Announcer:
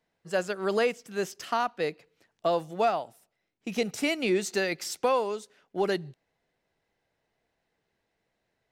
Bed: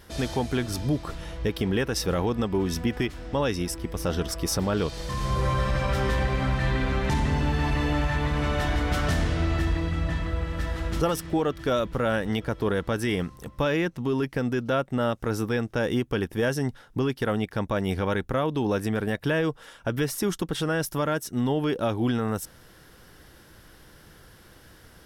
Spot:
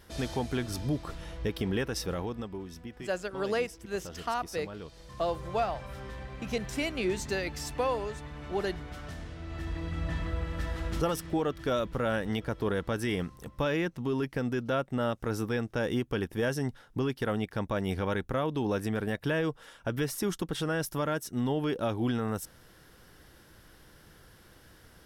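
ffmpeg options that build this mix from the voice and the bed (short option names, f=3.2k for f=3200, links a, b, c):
-filter_complex "[0:a]adelay=2750,volume=-4.5dB[a];[1:a]volume=7.5dB,afade=t=out:st=1.79:d=0.9:silence=0.251189,afade=t=in:st=9.43:d=0.77:silence=0.237137[b];[a][b]amix=inputs=2:normalize=0"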